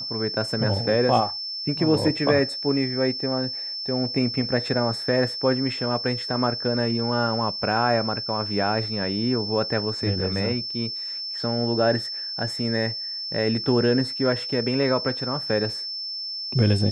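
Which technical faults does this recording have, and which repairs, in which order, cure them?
whistle 5,300 Hz −29 dBFS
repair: notch filter 5,300 Hz, Q 30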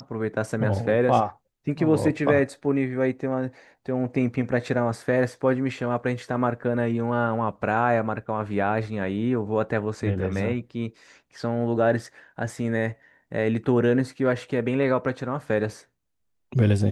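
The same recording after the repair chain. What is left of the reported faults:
none of them is left

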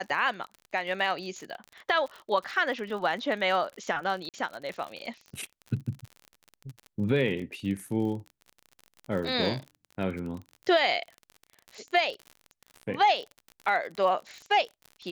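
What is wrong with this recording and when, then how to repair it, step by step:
surface crackle 46 per second −35 dBFS
0:04.29–0:04.34: drop-out 48 ms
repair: click removal
repair the gap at 0:04.29, 48 ms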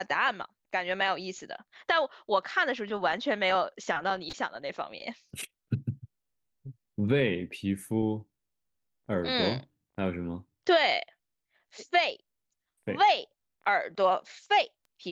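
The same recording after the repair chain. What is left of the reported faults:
none of them is left

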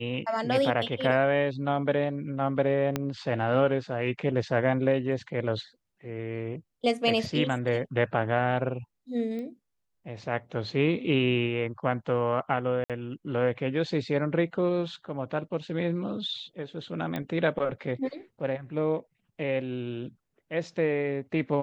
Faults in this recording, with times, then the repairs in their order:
0:02.96: click −13 dBFS
0:09.39: click −27 dBFS
0:12.84–0:12.90: drop-out 57 ms
0:17.16: click −19 dBFS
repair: click removal
repair the gap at 0:12.84, 57 ms

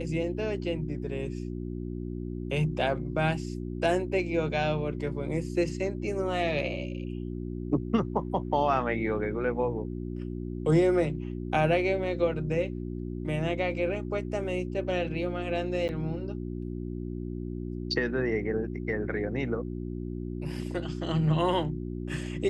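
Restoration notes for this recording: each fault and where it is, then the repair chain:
mains hum 60 Hz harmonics 6 −35 dBFS
0:15.88–0:15.89: drop-out 9.4 ms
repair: hum removal 60 Hz, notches 6
repair the gap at 0:15.88, 9.4 ms

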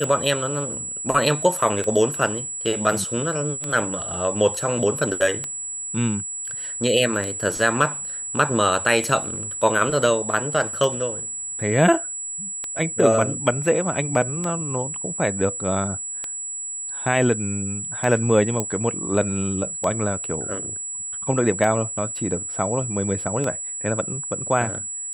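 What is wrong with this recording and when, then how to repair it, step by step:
scratch tick 33 1/3 rpm −13 dBFS
whistle 7,800 Hz −28 dBFS
0:18.60: click −9 dBFS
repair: click removal
notch filter 7,800 Hz, Q 30

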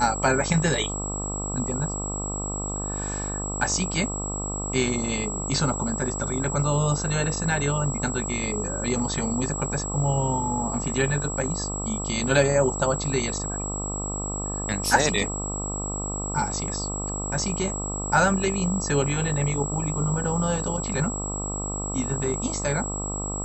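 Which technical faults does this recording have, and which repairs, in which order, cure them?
mains buzz 50 Hz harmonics 26 −32 dBFS
whistle 7,700 Hz −31 dBFS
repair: hum removal 50 Hz, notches 26
notch filter 7,700 Hz, Q 30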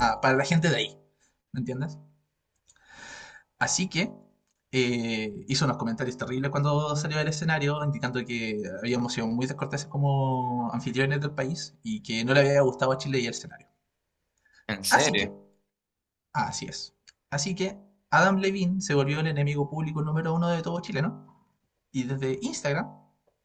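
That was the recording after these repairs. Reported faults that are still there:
none of them is left

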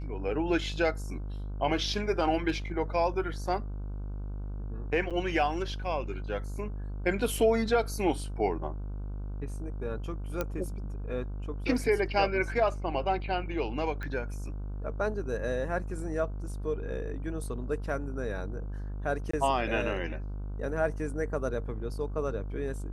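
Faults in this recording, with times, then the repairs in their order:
mains buzz 50 Hz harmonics 31 −36 dBFS
0:05.10–0:05.11: drop-out 7 ms
0:10.41: click −16 dBFS
0:14.03: click −25 dBFS
0:19.31–0:19.33: drop-out 24 ms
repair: click removal
hum removal 50 Hz, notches 31
repair the gap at 0:05.10, 7 ms
repair the gap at 0:19.31, 24 ms

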